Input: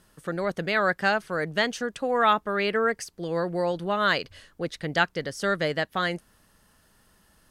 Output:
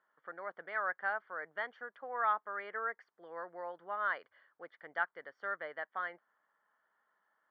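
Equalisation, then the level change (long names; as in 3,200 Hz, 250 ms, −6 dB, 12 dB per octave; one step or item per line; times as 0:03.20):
Savitzky-Golay smoothing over 41 samples
high-pass filter 1,000 Hz 12 dB per octave
high-frequency loss of the air 340 metres
−5.5 dB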